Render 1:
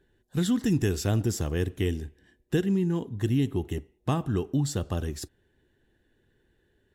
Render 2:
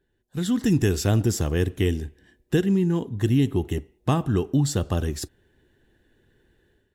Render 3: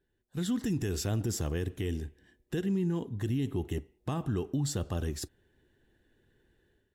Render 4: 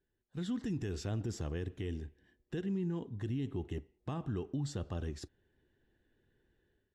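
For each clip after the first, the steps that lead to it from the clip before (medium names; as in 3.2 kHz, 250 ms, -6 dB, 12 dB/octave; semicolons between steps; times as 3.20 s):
level rider gain up to 11.5 dB; trim -6 dB
peak limiter -17.5 dBFS, peak gain reduction 8 dB; trim -6 dB
distance through air 84 m; trim -5.5 dB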